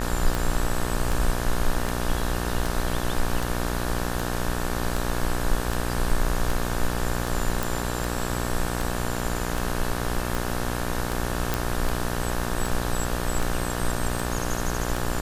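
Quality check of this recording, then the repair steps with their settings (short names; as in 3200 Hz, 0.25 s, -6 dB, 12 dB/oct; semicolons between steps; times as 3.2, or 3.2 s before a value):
buzz 60 Hz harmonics 30 -29 dBFS
tick 78 rpm
7.63 pop
11.54 pop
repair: de-click; de-hum 60 Hz, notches 30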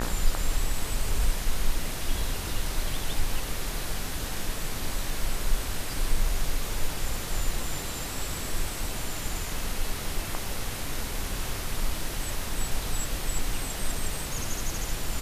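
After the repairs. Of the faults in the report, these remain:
none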